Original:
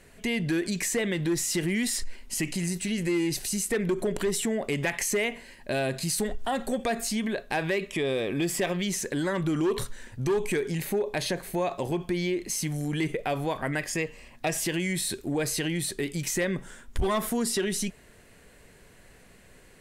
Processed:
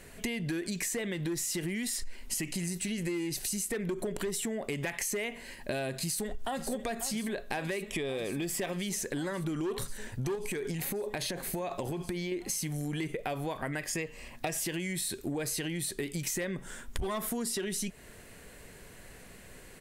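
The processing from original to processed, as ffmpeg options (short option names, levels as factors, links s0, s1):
-filter_complex "[0:a]asplit=2[s0][s1];[s1]afade=t=in:st=6.02:d=0.01,afade=t=out:st=6.66:d=0.01,aecho=0:1:540|1080|1620|2160|2700|3240|3780|4320|4860|5400|5940|6480:0.223872|0.190291|0.161748|0.137485|0.116863|0.0993332|0.0844333|0.0717683|0.061003|0.0518526|0.0440747|0.0374635[s2];[s0][s2]amix=inputs=2:normalize=0,asettb=1/sr,asplit=3[s3][s4][s5];[s3]atrim=end=10.354[s6];[s4]atrim=start=10.35:end=12.32,asetpts=PTS-STARTPTS,afade=t=in:d=0.004:c=qsin,afade=t=out:st=1.966:d=0.004:c=qsin,acompressor=threshold=0.0398:ratio=6:attack=3.2:release=140:knee=1:detection=peak[s7];[s5]atrim=start=12.316[s8];[s6][s7]acrossfade=d=0.004:c1=hsin:c2=qsin[s9];[s9][s8]acrossfade=d=0.004:c1=qsin:c2=hsin,highshelf=f=11000:g=7,acompressor=threshold=0.0178:ratio=5,volume=1.41"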